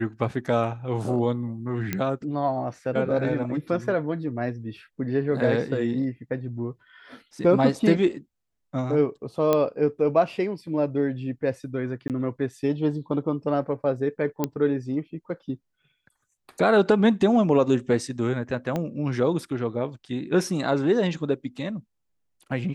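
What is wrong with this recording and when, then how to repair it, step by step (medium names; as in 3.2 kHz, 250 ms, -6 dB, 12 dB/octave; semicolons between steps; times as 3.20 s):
1.93 s: pop -12 dBFS
9.53 s: pop -9 dBFS
12.08–12.10 s: dropout 18 ms
14.44 s: pop -10 dBFS
18.76 s: pop -15 dBFS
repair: de-click; interpolate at 12.08 s, 18 ms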